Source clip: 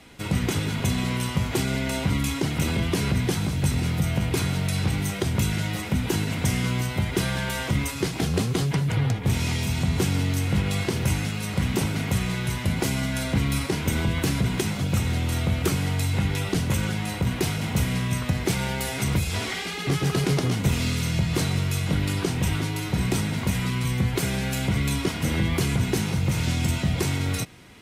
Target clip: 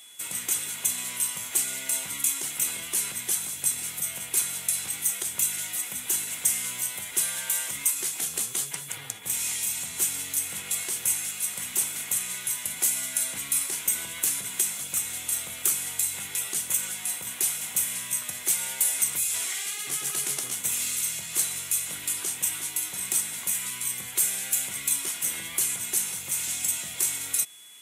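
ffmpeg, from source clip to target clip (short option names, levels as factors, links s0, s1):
-af "bandpass=f=4600:t=q:w=0.5:csg=0,aeval=exprs='val(0)+0.00447*sin(2*PI*3400*n/s)':c=same,aexciter=amount=7.2:drive=7.4:freq=7000,volume=0.708"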